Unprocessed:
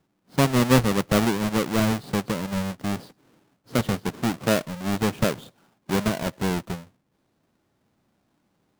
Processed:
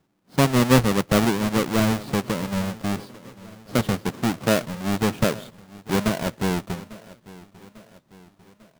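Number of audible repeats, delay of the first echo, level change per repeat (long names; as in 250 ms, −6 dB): 3, 847 ms, −5.5 dB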